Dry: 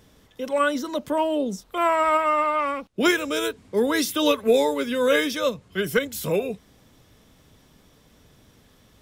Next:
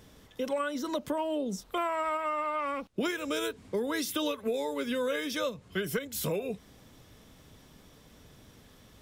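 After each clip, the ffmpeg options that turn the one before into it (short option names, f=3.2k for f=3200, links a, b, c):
-af "acompressor=threshold=-28dB:ratio=12"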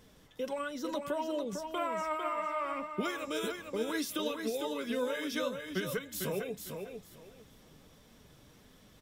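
-filter_complex "[0:a]flanger=delay=3.7:depth=3.6:regen=54:speed=1.6:shape=triangular,asplit=2[a][b];[b]aecho=0:1:451|902|1353:0.501|0.11|0.0243[c];[a][c]amix=inputs=2:normalize=0"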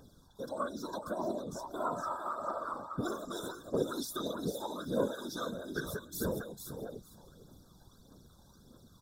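-af "aphaser=in_gain=1:out_gain=1:delay=1.3:decay=0.55:speed=1.6:type=triangular,afftfilt=real='re*(1-between(b*sr/4096,1600,3400))':imag='im*(1-between(b*sr/4096,1600,3400))':win_size=4096:overlap=0.75,afftfilt=real='hypot(re,im)*cos(2*PI*random(0))':imag='hypot(re,im)*sin(2*PI*random(1))':win_size=512:overlap=0.75,volume=3dB"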